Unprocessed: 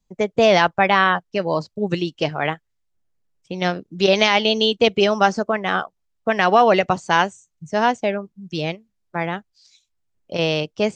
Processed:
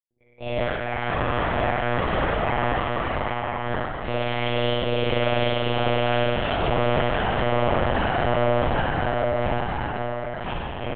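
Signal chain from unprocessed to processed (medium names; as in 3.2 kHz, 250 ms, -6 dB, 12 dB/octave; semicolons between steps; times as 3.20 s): backward echo that repeats 393 ms, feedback 84%, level -1 dB; high-pass 88 Hz 12 dB/octave; gate -14 dBFS, range -23 dB; reverse; compression 8:1, threshold -26 dBFS, peak gain reduction 18.5 dB; reverse; peak limiter -20.5 dBFS, peak gain reduction 6.5 dB; doubling 44 ms -4 dB; on a send: feedback delay 1020 ms, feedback 19%, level -3.5 dB; on the sum: spectral noise reduction 19 dB; spring tank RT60 1.8 s, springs 49 ms, chirp 65 ms, DRR -7 dB; monotone LPC vocoder at 8 kHz 120 Hz; trim -1.5 dB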